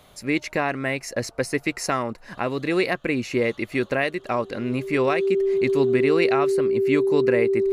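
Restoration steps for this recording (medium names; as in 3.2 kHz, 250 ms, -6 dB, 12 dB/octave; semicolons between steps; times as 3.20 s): band-stop 390 Hz, Q 30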